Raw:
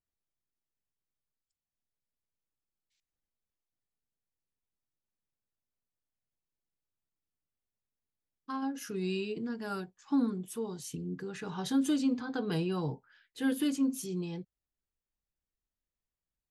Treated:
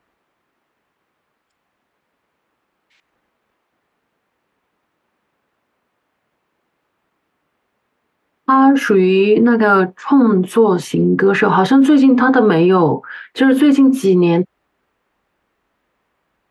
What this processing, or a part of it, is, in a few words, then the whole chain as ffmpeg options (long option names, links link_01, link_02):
mastering chain: -filter_complex "[0:a]highpass=46,equalizer=frequency=1100:width_type=o:width=0.77:gain=3,acompressor=threshold=-38dB:ratio=1.5,alimiter=level_in=33.5dB:limit=-1dB:release=50:level=0:latency=1,acrossover=split=210 2600:gain=0.178 1 0.0794[link_01][link_02][link_03];[link_01][link_02][link_03]amix=inputs=3:normalize=0,volume=-1dB"